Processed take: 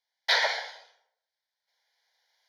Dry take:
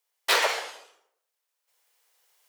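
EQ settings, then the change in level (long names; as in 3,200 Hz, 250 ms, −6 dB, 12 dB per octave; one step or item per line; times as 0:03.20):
low-pass filter 4,400 Hz 12 dB per octave
spectral tilt +2 dB per octave
phaser with its sweep stopped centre 1,800 Hz, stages 8
0.0 dB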